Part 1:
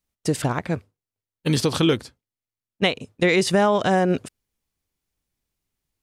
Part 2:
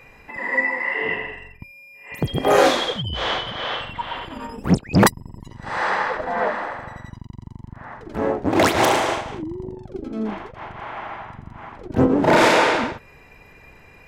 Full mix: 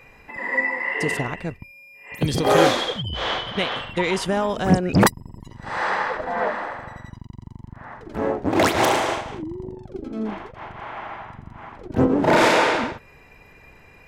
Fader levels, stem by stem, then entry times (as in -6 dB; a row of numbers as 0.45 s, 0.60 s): -4.5 dB, -1.5 dB; 0.75 s, 0.00 s